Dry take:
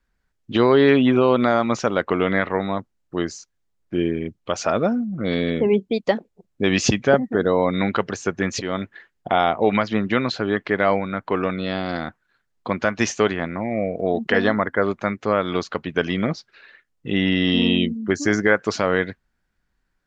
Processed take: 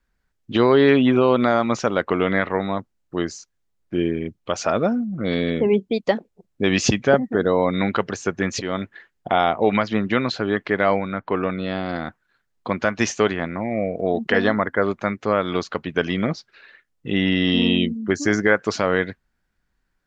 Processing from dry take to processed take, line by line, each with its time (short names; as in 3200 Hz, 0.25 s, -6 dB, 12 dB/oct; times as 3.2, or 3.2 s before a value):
11.13–12.05 air absorption 150 m